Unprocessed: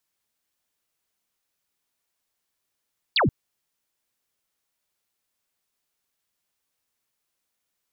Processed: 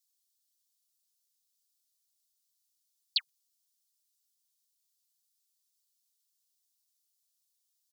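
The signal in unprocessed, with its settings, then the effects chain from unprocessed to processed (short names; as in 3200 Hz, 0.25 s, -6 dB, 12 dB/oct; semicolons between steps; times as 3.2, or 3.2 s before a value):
laser zap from 4900 Hz, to 93 Hz, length 0.13 s sine, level -17 dB
inverse Chebyshev high-pass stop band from 690 Hz, stop band 80 dB; comb 6.4 ms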